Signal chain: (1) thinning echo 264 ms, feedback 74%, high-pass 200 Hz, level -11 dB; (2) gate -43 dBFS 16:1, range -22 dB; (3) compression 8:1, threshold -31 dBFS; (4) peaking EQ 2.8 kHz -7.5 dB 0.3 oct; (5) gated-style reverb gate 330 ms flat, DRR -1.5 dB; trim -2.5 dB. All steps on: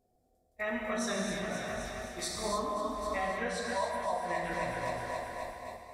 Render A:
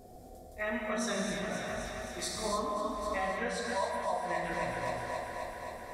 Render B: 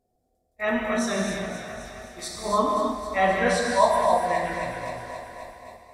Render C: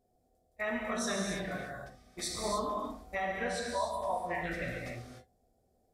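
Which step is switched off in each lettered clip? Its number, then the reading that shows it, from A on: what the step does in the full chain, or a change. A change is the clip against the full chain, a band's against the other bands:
2, momentary loudness spread change +2 LU; 3, mean gain reduction 5.0 dB; 1, momentary loudness spread change +5 LU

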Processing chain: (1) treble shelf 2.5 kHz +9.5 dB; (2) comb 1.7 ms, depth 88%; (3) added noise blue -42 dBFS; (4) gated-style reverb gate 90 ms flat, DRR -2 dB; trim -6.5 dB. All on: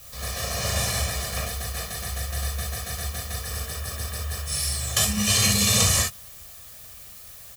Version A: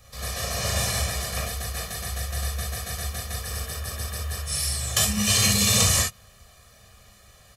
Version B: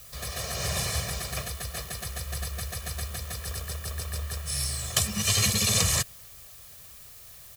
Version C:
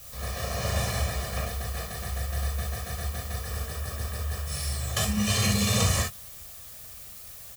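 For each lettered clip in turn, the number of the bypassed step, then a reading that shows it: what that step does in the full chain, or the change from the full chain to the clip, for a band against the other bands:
3, momentary loudness spread change -9 LU; 4, loudness change -4.0 LU; 1, 8 kHz band -7.5 dB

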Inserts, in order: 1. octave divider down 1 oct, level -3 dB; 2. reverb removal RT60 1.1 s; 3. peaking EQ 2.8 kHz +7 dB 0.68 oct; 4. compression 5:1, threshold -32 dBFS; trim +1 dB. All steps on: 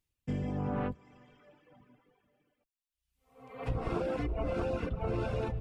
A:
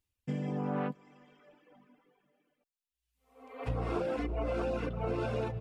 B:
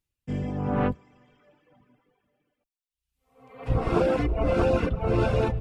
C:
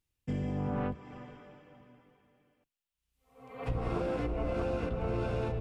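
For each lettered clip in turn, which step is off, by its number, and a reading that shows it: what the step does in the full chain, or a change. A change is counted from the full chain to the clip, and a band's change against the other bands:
1, 125 Hz band -2.0 dB; 4, mean gain reduction 7.5 dB; 2, momentary loudness spread change +10 LU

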